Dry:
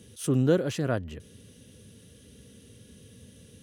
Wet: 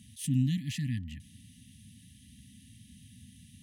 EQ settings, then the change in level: brick-wall FIR band-stop 280–1700 Hz; peaking EQ 5.8 kHz -4 dB 0.37 oct; -1.5 dB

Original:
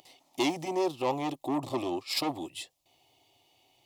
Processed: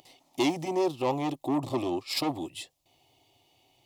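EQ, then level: bass shelf 290 Hz +6 dB; 0.0 dB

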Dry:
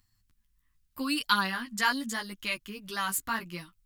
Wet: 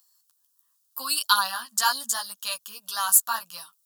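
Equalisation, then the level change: high-pass 640 Hz 12 dB/octave; treble shelf 4.3 kHz +10.5 dB; static phaser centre 890 Hz, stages 4; +6.0 dB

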